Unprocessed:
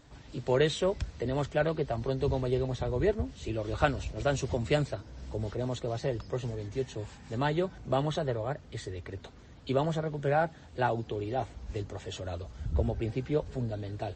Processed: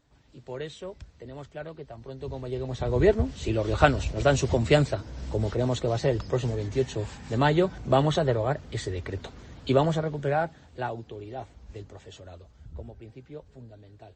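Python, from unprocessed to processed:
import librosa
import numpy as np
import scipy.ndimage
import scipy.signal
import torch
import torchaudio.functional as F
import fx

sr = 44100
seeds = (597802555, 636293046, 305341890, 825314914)

y = fx.gain(x, sr, db=fx.line((2.0, -10.5), (2.6, -2.5), (2.99, 7.0), (9.71, 7.0), (11.09, -5.5), (11.94, -5.5), (12.95, -13.0)))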